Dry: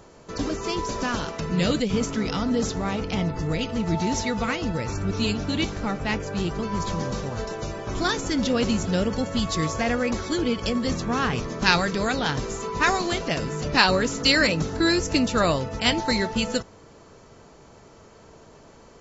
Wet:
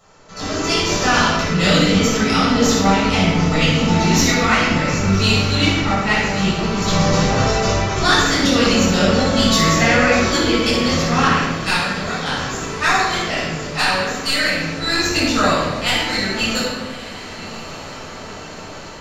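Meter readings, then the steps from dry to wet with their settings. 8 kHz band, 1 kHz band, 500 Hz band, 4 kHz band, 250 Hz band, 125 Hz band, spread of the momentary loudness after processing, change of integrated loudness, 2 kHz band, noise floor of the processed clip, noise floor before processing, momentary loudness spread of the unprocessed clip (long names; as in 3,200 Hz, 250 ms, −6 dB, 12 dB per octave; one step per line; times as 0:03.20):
can't be measured, +9.0 dB, +6.5 dB, +9.0 dB, +7.0 dB, +8.5 dB, 15 LU, +8.0 dB, +9.0 dB, −33 dBFS, −50 dBFS, 8 LU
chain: stylus tracing distortion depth 0.037 ms
tilt shelving filter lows −5.5 dB, about 680 Hz
automatic gain control gain up to 14 dB
feedback delay with all-pass diffusion 1,160 ms, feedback 50%, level −15 dB
rectangular room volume 790 cubic metres, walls mixed, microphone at 6.6 metres
level −11.5 dB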